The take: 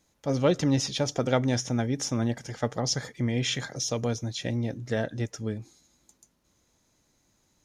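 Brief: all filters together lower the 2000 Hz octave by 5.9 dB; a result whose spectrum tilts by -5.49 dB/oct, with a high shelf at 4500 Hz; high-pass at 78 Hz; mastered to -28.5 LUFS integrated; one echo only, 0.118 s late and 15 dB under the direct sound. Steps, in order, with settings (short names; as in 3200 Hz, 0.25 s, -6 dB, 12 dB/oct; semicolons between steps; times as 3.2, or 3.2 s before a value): HPF 78 Hz; bell 2000 Hz -7 dB; high shelf 4500 Hz -3 dB; echo 0.118 s -15 dB; gain +1 dB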